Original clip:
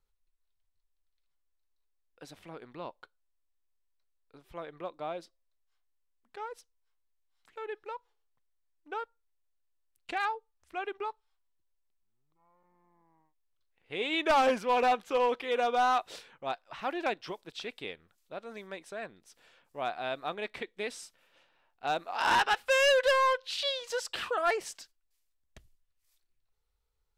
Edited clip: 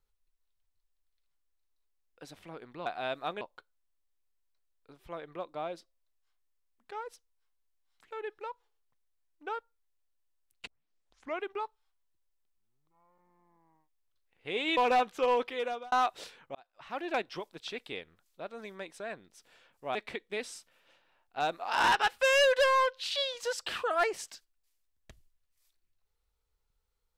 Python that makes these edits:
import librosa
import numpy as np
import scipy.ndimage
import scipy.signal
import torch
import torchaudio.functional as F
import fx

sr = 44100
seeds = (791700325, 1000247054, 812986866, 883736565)

y = fx.edit(x, sr, fx.tape_start(start_s=10.12, length_s=0.76),
    fx.cut(start_s=14.22, length_s=0.47),
    fx.fade_out_span(start_s=15.38, length_s=0.46),
    fx.fade_in_span(start_s=16.47, length_s=0.63),
    fx.move(start_s=19.87, length_s=0.55, to_s=2.86), tone=tone)